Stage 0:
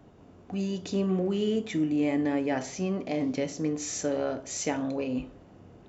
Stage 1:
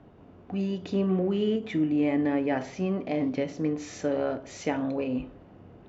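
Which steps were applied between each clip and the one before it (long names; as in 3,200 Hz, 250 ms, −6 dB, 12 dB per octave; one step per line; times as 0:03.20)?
low-pass filter 3,200 Hz 12 dB per octave
every ending faded ahead of time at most 200 dB per second
level +1.5 dB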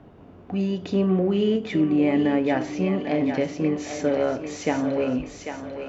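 feedback echo with a high-pass in the loop 795 ms, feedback 51%, high-pass 520 Hz, level −6 dB
level +4.5 dB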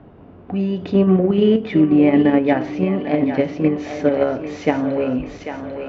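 in parallel at −2.5 dB: output level in coarse steps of 21 dB
on the sum: high-frequency loss of the air 210 metres
level +3.5 dB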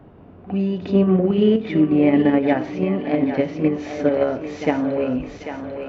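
backwards echo 56 ms −13 dB
level −2 dB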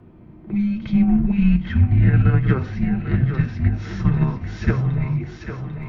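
frequency shifter −400 Hz
notch comb filter 280 Hz
level +1.5 dB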